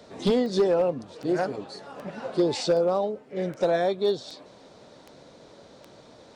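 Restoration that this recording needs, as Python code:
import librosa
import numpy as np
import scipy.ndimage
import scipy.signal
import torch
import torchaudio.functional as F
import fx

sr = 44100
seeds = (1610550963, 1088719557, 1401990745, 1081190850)

y = fx.fix_declip(x, sr, threshold_db=-15.5)
y = fx.fix_declick_ar(y, sr, threshold=10.0)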